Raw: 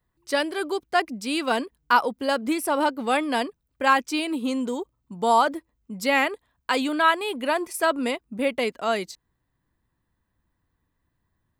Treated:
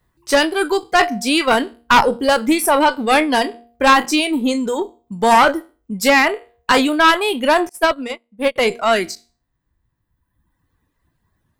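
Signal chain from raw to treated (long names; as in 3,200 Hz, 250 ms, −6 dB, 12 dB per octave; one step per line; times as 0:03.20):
peak hold with a decay on every bin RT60 0.34 s
reverb reduction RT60 1.5 s
hum removal 235.6 Hz, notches 3
harmonic generator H 4 −12 dB, 5 −12 dB, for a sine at −4.5 dBFS
0:07.69–0:08.56: expander for the loud parts 2.5 to 1, over −33 dBFS
level +3 dB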